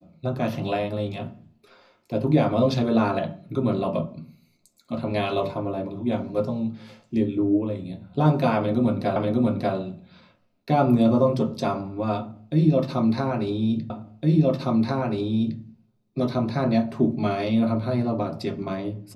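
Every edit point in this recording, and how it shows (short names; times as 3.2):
9.16 repeat of the last 0.59 s
13.9 repeat of the last 1.71 s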